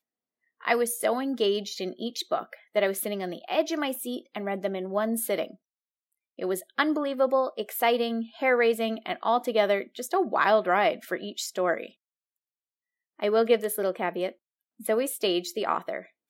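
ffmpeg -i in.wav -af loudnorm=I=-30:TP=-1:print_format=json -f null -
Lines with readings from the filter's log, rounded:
"input_i" : "-27.5",
"input_tp" : "-8.2",
"input_lra" : "4.0",
"input_thresh" : "-37.8",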